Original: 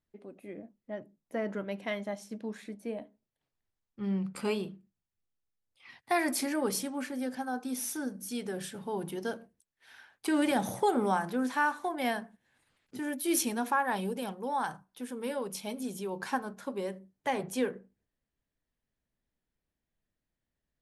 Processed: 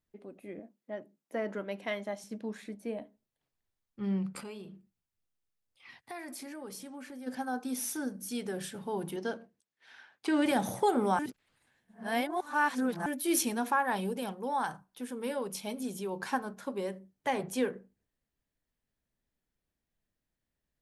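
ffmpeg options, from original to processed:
ffmpeg -i in.wav -filter_complex "[0:a]asettb=1/sr,asplit=3[link_01][link_02][link_03];[link_01]atrim=end=0.594[link_04];[link_02]atrim=start=0.59:end=2.24,asetpts=PTS-STARTPTS,afade=type=in:duration=0.004:curve=qsin,afade=type=out:start_time=1.646:duration=0.004:curve=qsin,highpass=220[link_05];[link_03]atrim=start=2.236[link_06];[link_04][link_05]acrossfade=duration=0.004:curve1=hsin:curve2=qsin[link_07];[link_07][link_06]acrossfade=duration=0.004:curve1=qsin:curve2=hsin,asplit=3[link_08][link_09][link_10];[link_08]afade=type=out:start_time=4.4:duration=0.02[link_11];[link_09]acompressor=threshold=-45dB:ratio=3:attack=3.2:release=140:knee=1:detection=peak,afade=type=in:start_time=4.4:duration=0.02,afade=type=out:start_time=7.26:duration=0.02[link_12];[link_10]afade=type=in:start_time=7.26:duration=0.02[link_13];[link_11][link_12][link_13]amix=inputs=3:normalize=0,asettb=1/sr,asplit=3[link_14][link_15][link_16];[link_14]atrim=end=9.164[link_17];[link_15]atrim=start=9.16:end=10.46,asetpts=PTS-STARTPTS,afade=type=in:duration=0.004:curve=qsin,afade=type=out:start_time=1.296:duration=0.004:curve=qsin,highpass=130,lowpass=6200[link_18];[link_16]atrim=start=10.456[link_19];[link_17][link_18]acrossfade=duration=0.004:curve1=hsin:curve2=qsin[link_20];[link_20][link_19]acrossfade=duration=0.004:curve1=qsin:curve2=hsin,asplit=3[link_21][link_22][link_23];[link_21]atrim=end=11.192[link_24];[link_22]atrim=start=11.188:end=13.062,asetpts=PTS-STARTPTS,areverse[link_25];[link_23]atrim=start=13.058[link_26];[link_24][link_25]acrossfade=duration=0.004:curve1=hsin:curve2=hsin[link_27];[link_27][link_26]acrossfade=duration=0.004:curve1=hsin:curve2=hsin" out.wav

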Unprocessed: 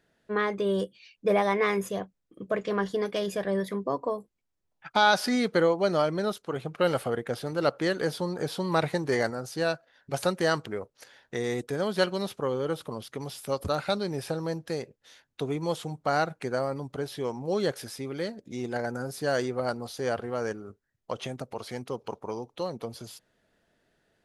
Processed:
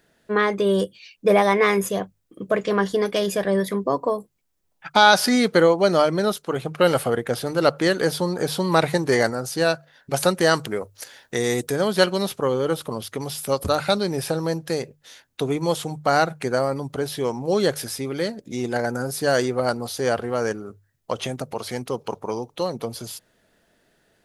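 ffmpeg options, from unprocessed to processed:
ffmpeg -i in.wav -filter_complex "[0:a]asettb=1/sr,asplit=3[link_01][link_02][link_03];[link_01]atrim=end=10.534[link_04];[link_02]atrim=start=10.53:end=11.73,asetpts=PTS-STARTPTS,afade=type=in:duration=0.004:curve=qsin,afade=type=out:start_time=1.196:duration=0.004:curve=qsin,highshelf=frequency=5400:gain=7[link_05];[link_03]atrim=start=11.726[link_06];[link_04][link_05]acrossfade=duration=0.004:curve1=hsin:curve2=qsin[link_07];[link_07][link_06]acrossfade=duration=0.004:curve1=qsin:curve2=hsin,highshelf=frequency=7600:gain=8,bandreject=frequency=50:width_type=h:width=6,bandreject=frequency=100:width_type=h:width=6,bandreject=frequency=150:width_type=h:width=6,volume=7dB" out.wav

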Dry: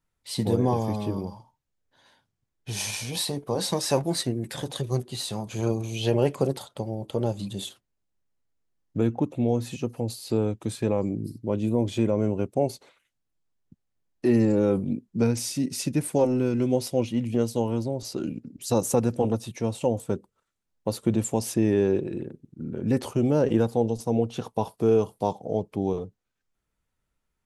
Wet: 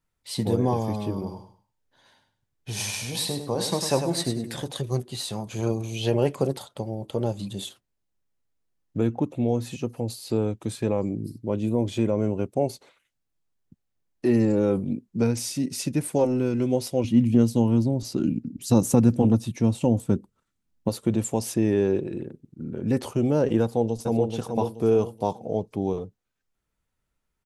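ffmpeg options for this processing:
ffmpeg -i in.wav -filter_complex "[0:a]asettb=1/sr,asplit=3[link_01][link_02][link_03];[link_01]atrim=end=1.124[link_04];[link_02]atrim=start=1.12:end=4.61,asetpts=PTS-STARTPTS,afade=type=in:duration=0.004:curve=qsin,afade=type=out:start_time=3.486:duration=0.004:curve=qsin,aecho=1:1:100|200|300:0.398|0.0955|0.0229,atrim=end_sample=153909[link_05];[link_03]atrim=start=4.606[link_06];[link_04][link_05]acrossfade=duration=0.004:curve1=hsin:curve2=qsin[link_07];[link_07][link_06]acrossfade=duration=0.004:curve1=qsin:curve2=hsin,asettb=1/sr,asplit=3[link_08][link_09][link_10];[link_08]atrim=end=17.044[link_11];[link_09]atrim=start=17.04:end=20.89,asetpts=PTS-STARTPTS,afade=type=in:duration=0.004:curve=qsin,afade=type=out:start_time=3.846:duration=0.004:curve=qsin,lowshelf=frequency=350:width_type=q:width=1.5:gain=6.5[link_12];[link_10]atrim=start=20.886[link_13];[link_11][link_12]acrossfade=duration=0.004:curve1=hsin:curve2=qsin[link_14];[link_14][link_13]acrossfade=duration=0.004:curve1=qsin:curve2=hsin,asplit=2[link_15][link_16];[link_16]afade=type=in:start_time=23.62:duration=0.01,afade=type=out:start_time=24.29:duration=0.01,aecho=0:1:430|860|1290|1720:0.562341|0.196819|0.0688868|0.0241104[link_17];[link_15][link_17]amix=inputs=2:normalize=0" out.wav

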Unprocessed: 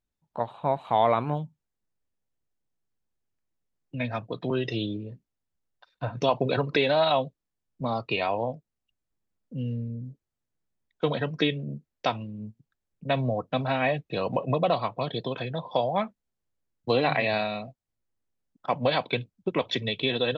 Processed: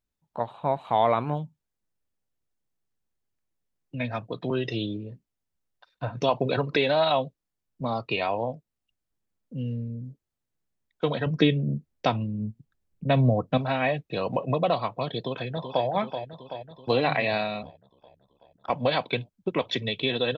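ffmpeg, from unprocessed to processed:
ffmpeg -i in.wav -filter_complex "[0:a]asettb=1/sr,asplit=3[link_01][link_02][link_03];[link_01]atrim=end=11.264[link_04];[link_02]atrim=start=11.26:end=13.58,asetpts=PTS-STARTPTS,afade=type=in:duration=0.004:curve=qsin,afade=type=out:start_time=2.316:duration=0.004:curve=qsin,lowshelf=frequency=370:gain=9[link_05];[link_03]atrim=start=13.576[link_06];[link_04][link_05]acrossfade=duration=0.004:curve1=hsin:curve2=qsin[link_07];[link_07][link_06]acrossfade=duration=0.004:curve1=qsin:curve2=hsin,asplit=2[link_08][link_09];[link_09]afade=type=in:start_time=15.18:duration=0.01,afade=type=out:start_time=15.86:duration=0.01,aecho=0:1:380|760|1140|1520|1900|2280|2660|3040|3420:0.398107|0.25877|0.1682|0.10933|0.0710646|0.046192|0.0300248|0.0195161|0.0126855[link_10];[link_08][link_10]amix=inputs=2:normalize=0,asettb=1/sr,asplit=3[link_11][link_12][link_13];[link_11]atrim=end=17.624[link_14];[link_12]atrim=start=17.62:end=18.7,asetpts=PTS-STARTPTS,afade=type=in:duration=0.004:curve=qsin,afade=type=out:start_time=1.076:duration=0.004:curve=qsin,aeval=exprs='val(0)*sin(2*PI*35*n/s)':channel_layout=same[link_15];[link_13]atrim=start=18.696[link_16];[link_14][link_15]acrossfade=duration=0.004:curve1=hsin:curve2=qsin[link_17];[link_17][link_16]acrossfade=duration=0.004:curve1=qsin:curve2=hsin" out.wav

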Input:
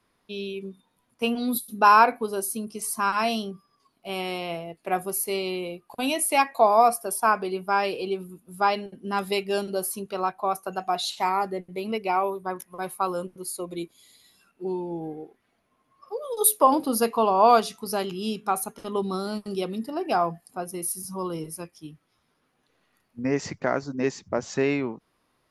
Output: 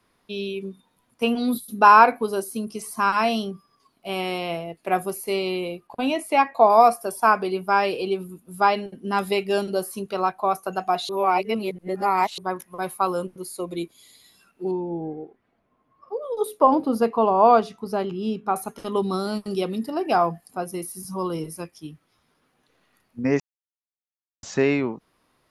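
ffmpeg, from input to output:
ffmpeg -i in.wav -filter_complex "[0:a]asettb=1/sr,asplit=3[link_01][link_02][link_03];[link_01]atrim=end=5.874[link_04];[link_02]atrim=start=5.87:end=6.7,asetpts=PTS-STARTPTS,afade=type=in:duration=0.004:curve=qsin,afade=type=out:start_time=0.826:duration=0.004:curve=qsin,aemphasis=mode=reproduction:type=75kf[link_05];[link_03]atrim=start=6.696[link_06];[link_04][link_05]acrossfade=duration=0.004:curve1=hsin:curve2=qsin[link_07];[link_07][link_06]acrossfade=duration=0.004:curve1=qsin:curve2=hsin,asettb=1/sr,asplit=3[link_08][link_09][link_10];[link_08]atrim=end=14.714[link_11];[link_09]atrim=start=14.71:end=18.56,asetpts=PTS-STARTPTS,afade=type=in:duration=0.004:curve=qsin,afade=type=out:start_time=3.846:duration=0.004:curve=qsin,lowpass=frequency=1100:poles=1[link_12];[link_10]atrim=start=18.556[link_13];[link_11][link_12]acrossfade=duration=0.004:curve1=hsin:curve2=qsin[link_14];[link_14][link_13]acrossfade=duration=0.004:curve1=qsin:curve2=hsin,asplit=5[link_15][link_16][link_17][link_18][link_19];[link_15]atrim=end=11.092[link_20];[link_16]atrim=start=11.088:end=12.382,asetpts=PTS-STARTPTS,areverse[link_21];[link_17]atrim=start=12.378:end=23.4,asetpts=PTS-STARTPTS,afade=type=out:start_time=11.018:duration=0.004:curve=hsin[link_22];[link_18]atrim=start=23.4:end=24.43,asetpts=PTS-STARTPTS,volume=0[link_23];[link_19]atrim=start=24.43,asetpts=PTS-STARTPTS,afade=type=in:duration=0.004:curve=hsin[link_24];[link_20][link_21]acrossfade=duration=0.004:curve1=hsin:curve2=hsin[link_25];[link_22][link_23][link_24]concat=n=3:v=0:a=1[link_26];[link_25][link_26]acrossfade=duration=0.004:curve1=hsin:curve2=hsin,acrossover=split=3000[link_27][link_28];[link_28]acompressor=threshold=-37dB:ratio=4:attack=1:release=60[link_29];[link_27][link_29]amix=inputs=2:normalize=0,volume=3.5dB" out.wav

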